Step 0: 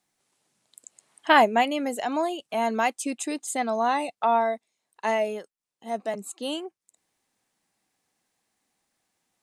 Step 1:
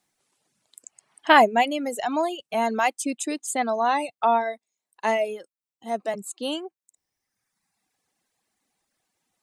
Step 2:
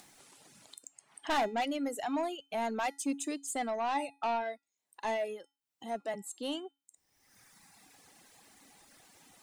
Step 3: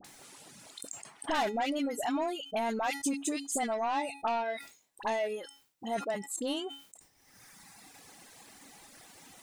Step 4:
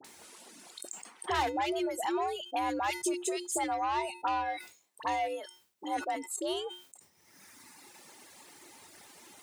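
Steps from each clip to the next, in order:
reverb removal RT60 1.3 s; trim +2.5 dB
upward compressor, threshold -33 dBFS; saturation -19 dBFS, distortion -7 dB; feedback comb 280 Hz, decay 0.31 s, harmonics odd, mix 60%
compression 2.5:1, threshold -37 dBFS, peak gain reduction 7.5 dB; phase dispersion highs, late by 47 ms, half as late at 1.2 kHz; decay stretcher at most 120 dB/s; trim +6 dB
frequency shift +76 Hz

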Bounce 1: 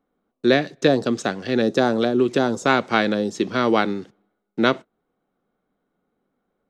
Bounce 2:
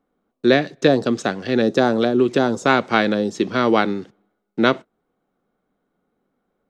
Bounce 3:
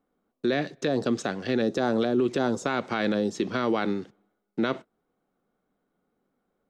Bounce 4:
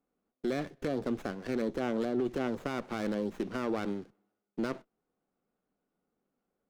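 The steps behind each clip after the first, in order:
treble shelf 6.3 kHz -4.5 dB; trim +2 dB
peak limiter -11.5 dBFS, peak gain reduction 10 dB; trim -4 dB
sliding maximum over 9 samples; trim -7 dB

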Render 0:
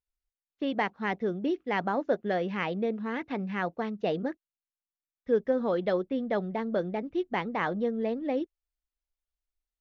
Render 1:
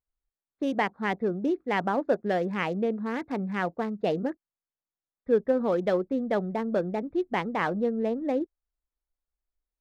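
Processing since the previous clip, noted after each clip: local Wiener filter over 15 samples; trim +2.5 dB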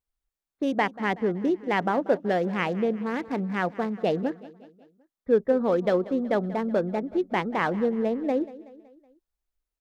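feedback delay 187 ms, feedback 52%, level -18 dB; trim +2 dB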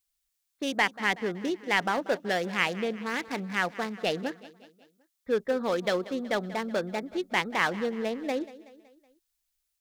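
tilt shelf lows -10 dB, about 1.5 kHz; in parallel at -8 dB: hard clipper -26.5 dBFS, distortion -8 dB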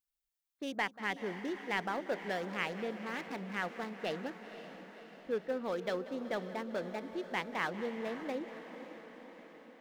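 peaking EQ 7.6 kHz -5 dB 2.8 oct; echo that smears into a reverb 529 ms, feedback 61%, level -11.5 dB; trim -8 dB

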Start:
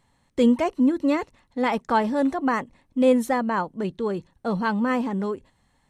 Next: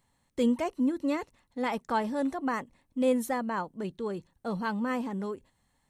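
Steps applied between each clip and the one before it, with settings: treble shelf 9.1 kHz +11.5 dB; trim -7.5 dB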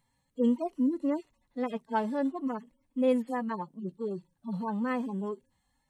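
harmonic-percussive separation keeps harmonic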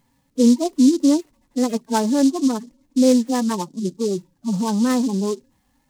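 peaking EQ 290 Hz +8.5 dB 1 oct; in parallel at -2 dB: compression, threshold -28 dBFS, peak gain reduction 12 dB; on the sum: delay time shaken by noise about 5.5 kHz, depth 0.058 ms; trim +4 dB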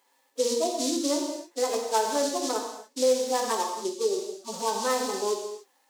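high-pass 430 Hz 24 dB/octave; gated-style reverb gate 320 ms falling, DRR 1 dB; compression 2:1, threshold -24 dBFS, peak gain reduction 7.5 dB

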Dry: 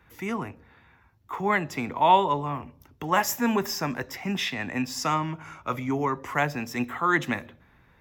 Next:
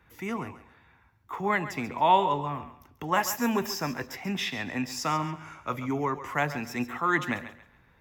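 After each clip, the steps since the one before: thinning echo 137 ms, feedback 28%, high-pass 420 Hz, level -12 dB; trim -2.5 dB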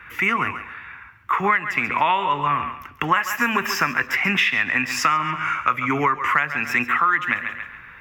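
high-order bell 1.8 kHz +15.5 dB; compression 8:1, threshold -25 dBFS, peak gain reduction 18.5 dB; trim +8.5 dB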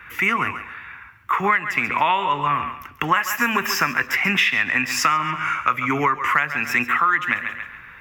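treble shelf 5.4 kHz +5.5 dB

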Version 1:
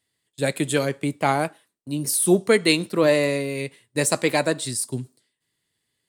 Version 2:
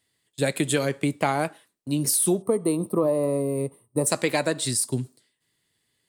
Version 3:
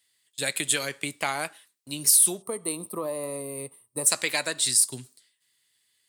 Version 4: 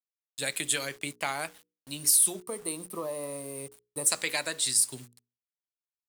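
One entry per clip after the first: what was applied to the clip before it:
time-frequency box 2.42–4.07 s, 1.3–8.2 kHz -21 dB; compression 6:1, threshold -22 dBFS, peak gain reduction 10.5 dB; trim +3 dB
tilt shelf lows -9.5 dB; trim -4.5 dB
bit crusher 8-bit; hum notches 60/120/180/240/300/360/420/480 Hz; trim -3.5 dB

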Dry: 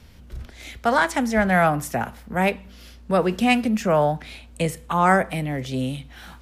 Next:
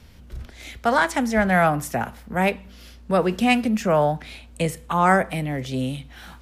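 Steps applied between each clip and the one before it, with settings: no audible change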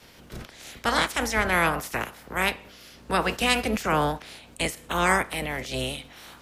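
spectral peaks clipped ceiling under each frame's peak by 21 dB; trim -4 dB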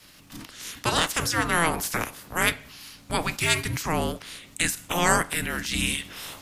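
treble shelf 3 kHz +10 dB; level rider gain up to 9 dB; frequency shift -340 Hz; trim -5 dB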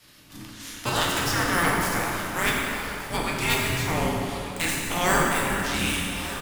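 tracing distortion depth 0.066 ms; delay 1184 ms -15 dB; plate-style reverb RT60 3 s, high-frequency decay 0.65×, pre-delay 0 ms, DRR -3.5 dB; trim -4 dB

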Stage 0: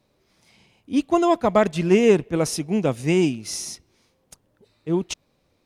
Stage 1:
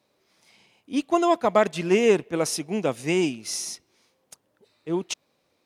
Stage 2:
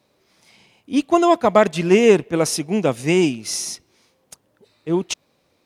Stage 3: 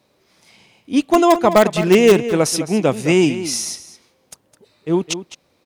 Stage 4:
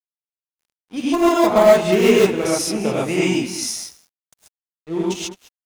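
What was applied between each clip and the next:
high-pass 380 Hz 6 dB/octave
bass shelf 160 Hz +6.5 dB; trim +5 dB
in parallel at -10 dB: integer overflow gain 5 dB; on the sum: echo from a far wall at 36 m, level -12 dB
gated-style reverb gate 160 ms rising, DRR -7.5 dB; crossover distortion -32 dBFS; trim -9.5 dB

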